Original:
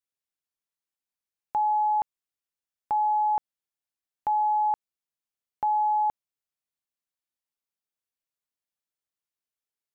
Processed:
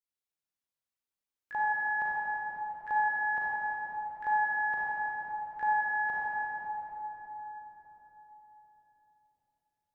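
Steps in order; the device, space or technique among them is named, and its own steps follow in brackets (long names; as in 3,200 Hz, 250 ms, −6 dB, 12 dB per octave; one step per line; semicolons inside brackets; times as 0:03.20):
shimmer-style reverb (pitch-shifted copies added +12 semitones −9 dB; convolution reverb RT60 4.6 s, pre-delay 30 ms, DRR −6.5 dB)
level −8.5 dB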